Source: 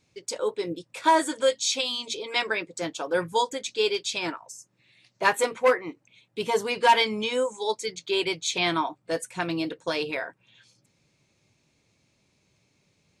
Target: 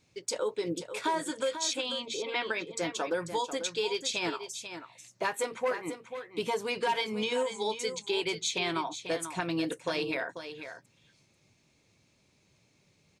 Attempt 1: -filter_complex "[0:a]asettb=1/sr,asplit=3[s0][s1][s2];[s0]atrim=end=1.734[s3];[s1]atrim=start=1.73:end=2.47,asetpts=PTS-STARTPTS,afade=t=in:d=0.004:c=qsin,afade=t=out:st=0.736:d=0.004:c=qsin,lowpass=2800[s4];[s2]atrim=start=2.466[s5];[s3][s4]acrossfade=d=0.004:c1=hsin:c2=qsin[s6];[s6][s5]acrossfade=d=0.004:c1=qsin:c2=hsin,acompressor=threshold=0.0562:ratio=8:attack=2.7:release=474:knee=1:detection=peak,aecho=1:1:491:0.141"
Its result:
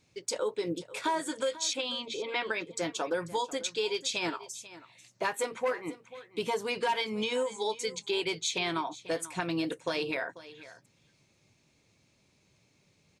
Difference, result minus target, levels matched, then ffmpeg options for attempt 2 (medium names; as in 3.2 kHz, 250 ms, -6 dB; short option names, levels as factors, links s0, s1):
echo-to-direct -7 dB
-filter_complex "[0:a]asettb=1/sr,asplit=3[s0][s1][s2];[s0]atrim=end=1.734[s3];[s1]atrim=start=1.73:end=2.47,asetpts=PTS-STARTPTS,afade=t=in:d=0.004:c=qsin,afade=t=out:st=0.736:d=0.004:c=qsin,lowpass=2800[s4];[s2]atrim=start=2.466[s5];[s3][s4]acrossfade=d=0.004:c1=hsin:c2=qsin[s6];[s6][s5]acrossfade=d=0.004:c1=qsin:c2=hsin,acompressor=threshold=0.0562:ratio=8:attack=2.7:release=474:knee=1:detection=peak,aecho=1:1:491:0.316"